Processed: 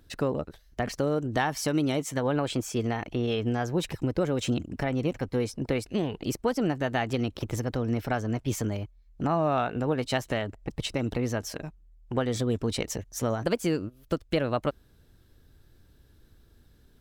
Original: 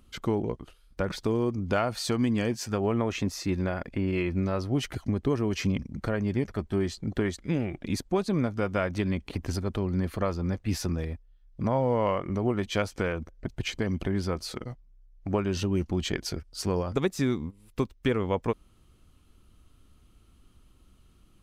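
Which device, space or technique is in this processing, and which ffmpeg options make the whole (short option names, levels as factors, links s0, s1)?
nightcore: -af "asetrate=55566,aresample=44100"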